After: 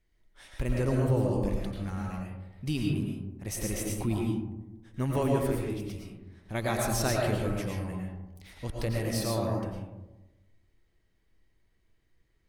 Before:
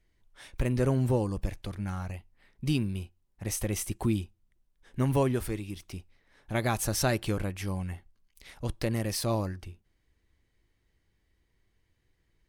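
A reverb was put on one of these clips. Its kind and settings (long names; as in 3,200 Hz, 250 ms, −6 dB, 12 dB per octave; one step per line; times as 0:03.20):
comb and all-pass reverb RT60 1.1 s, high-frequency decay 0.3×, pre-delay 70 ms, DRR −1.5 dB
level −3.5 dB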